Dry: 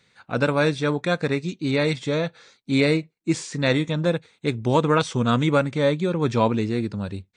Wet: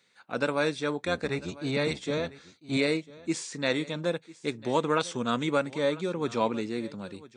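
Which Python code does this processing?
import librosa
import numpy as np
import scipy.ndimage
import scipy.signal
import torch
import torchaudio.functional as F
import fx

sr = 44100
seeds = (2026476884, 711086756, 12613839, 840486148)

p1 = fx.octave_divider(x, sr, octaves=1, level_db=2.0, at=(1.02, 2.77))
p2 = scipy.signal.sosfilt(scipy.signal.butter(2, 220.0, 'highpass', fs=sr, output='sos'), p1)
p3 = fx.high_shelf(p2, sr, hz=5800.0, db=5.0)
p4 = p3 + fx.echo_single(p3, sr, ms=998, db=-19.5, dry=0)
y = p4 * librosa.db_to_amplitude(-6.0)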